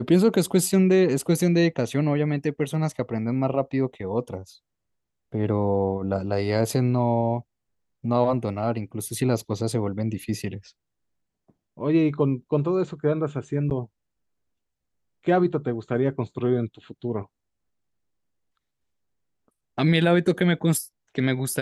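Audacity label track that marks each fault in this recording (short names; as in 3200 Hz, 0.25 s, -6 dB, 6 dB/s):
13.700000	13.710000	gap 9.2 ms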